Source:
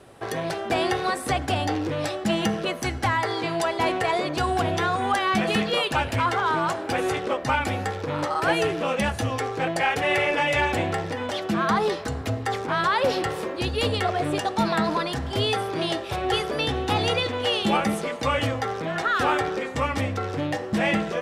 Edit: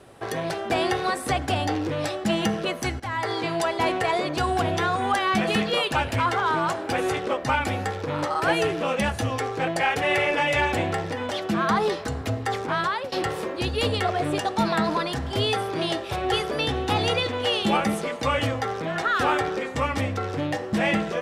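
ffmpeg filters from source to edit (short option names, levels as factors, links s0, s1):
-filter_complex "[0:a]asplit=3[s0][s1][s2];[s0]atrim=end=3,asetpts=PTS-STARTPTS,afade=t=out:st=2.996:d=0.004:c=hsin:silence=0.188365[s3];[s1]atrim=start=3:end=13.12,asetpts=PTS-STARTPTS,afade=t=in:d=0.31:silence=0.188365,afade=t=out:st=9.62:d=0.5:c=qsin:silence=0.0841395[s4];[s2]atrim=start=13.12,asetpts=PTS-STARTPTS,afade=t=in:d=0.004:c=hsin:silence=0.0841395[s5];[s3][s4][s5]concat=n=3:v=0:a=1"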